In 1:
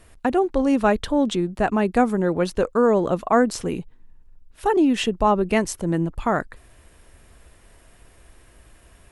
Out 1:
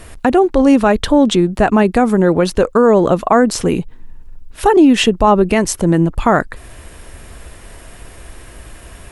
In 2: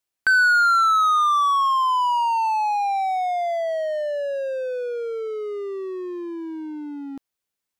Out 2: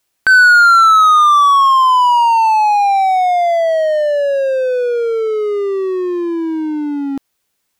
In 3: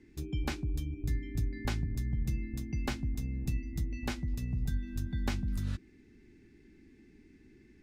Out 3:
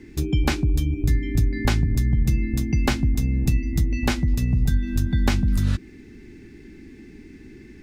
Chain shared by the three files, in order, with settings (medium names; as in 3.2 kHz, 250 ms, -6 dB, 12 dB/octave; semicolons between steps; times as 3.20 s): in parallel at +2 dB: compression, threshold -33 dBFS; on the sum: loudness maximiser +9 dB; trim -1 dB